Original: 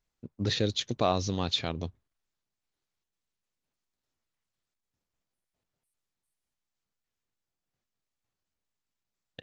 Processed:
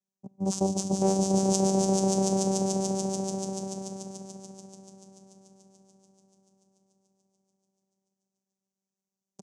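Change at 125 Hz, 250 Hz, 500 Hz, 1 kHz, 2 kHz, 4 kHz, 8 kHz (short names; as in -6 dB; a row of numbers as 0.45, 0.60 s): +4.5 dB, +11.0 dB, +7.5 dB, +4.5 dB, under -10 dB, -5.5 dB, n/a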